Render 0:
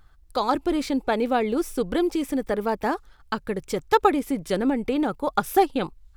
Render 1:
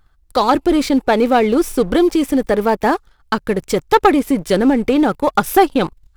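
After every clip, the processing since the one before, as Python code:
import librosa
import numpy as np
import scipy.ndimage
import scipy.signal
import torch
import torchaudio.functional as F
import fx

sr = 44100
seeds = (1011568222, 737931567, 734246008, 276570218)

y = fx.leveller(x, sr, passes=2)
y = y * librosa.db_to_amplitude(2.5)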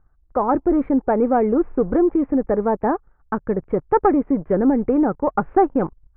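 y = scipy.signal.sosfilt(scipy.signal.bessel(8, 1000.0, 'lowpass', norm='mag', fs=sr, output='sos'), x)
y = y * librosa.db_to_amplitude(-3.0)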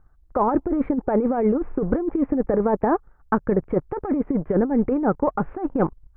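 y = fx.over_compress(x, sr, threshold_db=-19.0, ratio=-0.5)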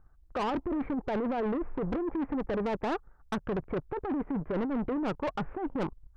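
y = 10.0 ** (-24.0 / 20.0) * np.tanh(x / 10.0 ** (-24.0 / 20.0))
y = y * librosa.db_to_amplitude(-3.5)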